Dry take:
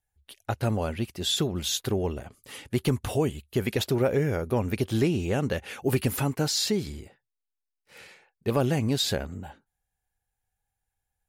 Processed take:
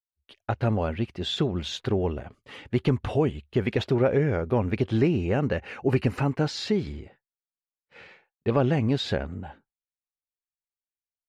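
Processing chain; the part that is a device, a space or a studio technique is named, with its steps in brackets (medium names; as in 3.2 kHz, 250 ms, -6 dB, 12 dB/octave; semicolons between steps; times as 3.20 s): hearing-loss simulation (low-pass 2.9 kHz 12 dB/octave; expander -52 dBFS); 4.98–6.31 s: band-stop 3.4 kHz, Q 5.4; 6.93–8.72 s: low-pass 8.4 kHz; trim +2 dB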